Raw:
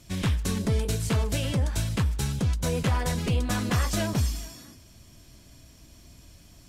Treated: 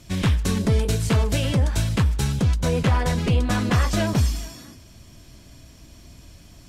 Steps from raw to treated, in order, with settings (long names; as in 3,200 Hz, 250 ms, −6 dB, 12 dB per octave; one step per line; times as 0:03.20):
high-shelf EQ 6,700 Hz −5 dB, from 0:02.61 −10.5 dB, from 0:04.07 −5.5 dB
level +5.5 dB